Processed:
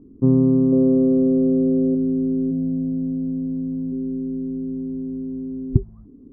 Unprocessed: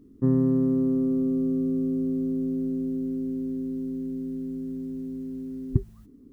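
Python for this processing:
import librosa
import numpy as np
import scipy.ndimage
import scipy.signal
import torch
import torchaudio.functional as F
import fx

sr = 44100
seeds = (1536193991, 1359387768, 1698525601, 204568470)

y = scipy.signal.sosfilt(scipy.signal.butter(4, 1000.0, 'lowpass', fs=sr, output='sos'), x)
y = fx.peak_eq(y, sr, hz=550.0, db=10.0, octaves=0.78, at=(0.72, 1.95))
y = fx.comb(y, sr, ms=6.4, depth=0.72, at=(2.5, 3.91), fade=0.02)
y = y * librosa.db_to_amplitude(6.0)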